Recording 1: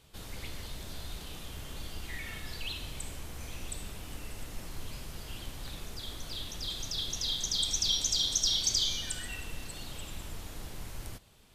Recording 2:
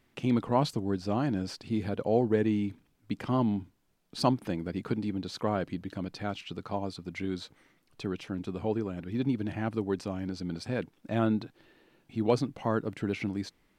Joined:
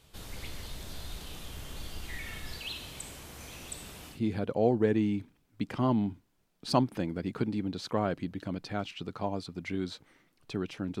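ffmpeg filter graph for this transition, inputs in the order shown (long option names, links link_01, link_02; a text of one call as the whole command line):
ffmpeg -i cue0.wav -i cue1.wav -filter_complex "[0:a]asettb=1/sr,asplit=3[link_01][link_02][link_03];[link_01]atrim=end=2.584[link_04];[link_02]atrim=start=2.58:end=4.21,asetpts=PTS-STARTPTS,afade=type=in:duration=0.004:curve=qsin,afade=type=out:start_time=1.626:duration=0.004:curve=qsin,highpass=frequency=130:poles=1[link_05];[link_03]atrim=start=4.206[link_06];[link_04][link_05]acrossfade=duration=0.004:curve1=hsin:curve2=qsin[link_07];[link_07][link_06]acrossfade=duration=0.004:curve1=qsin:curve2=hsin,apad=whole_dur=11,atrim=end=11,atrim=end=4.21,asetpts=PTS-STARTPTS[link_08];[1:a]atrim=start=1.57:end=8.5,asetpts=PTS-STARTPTS[link_09];[link_08][link_09]acrossfade=duration=0.14:curve1=tri:curve2=tri" out.wav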